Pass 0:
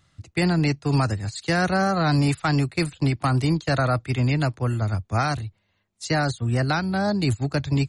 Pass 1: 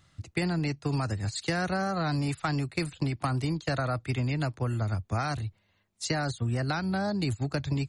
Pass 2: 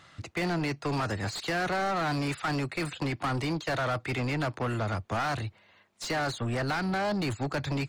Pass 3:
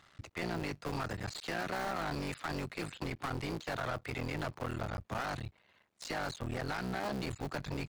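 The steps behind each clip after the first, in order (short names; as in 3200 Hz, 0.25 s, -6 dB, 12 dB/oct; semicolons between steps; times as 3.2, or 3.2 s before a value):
compressor, threshold -26 dBFS, peak gain reduction 9.5 dB
overdrive pedal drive 27 dB, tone 2000 Hz, clips at -15.5 dBFS; gain -5.5 dB
cycle switcher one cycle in 3, muted; gain -6 dB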